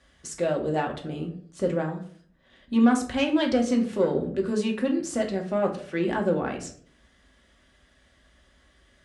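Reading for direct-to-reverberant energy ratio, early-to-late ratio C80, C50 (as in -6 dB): 1.0 dB, 14.5 dB, 10.0 dB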